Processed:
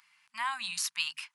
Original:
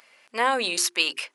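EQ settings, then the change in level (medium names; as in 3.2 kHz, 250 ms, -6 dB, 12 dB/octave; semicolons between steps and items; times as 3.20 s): Chebyshev band-stop 180–940 Hz, order 3; -8.5 dB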